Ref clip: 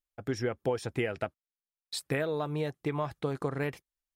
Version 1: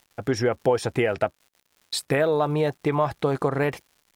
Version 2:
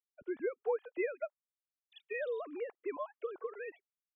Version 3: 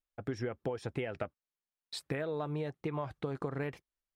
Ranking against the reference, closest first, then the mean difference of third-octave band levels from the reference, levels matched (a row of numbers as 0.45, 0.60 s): 1, 3, 2; 1.5, 3.0, 15.5 dB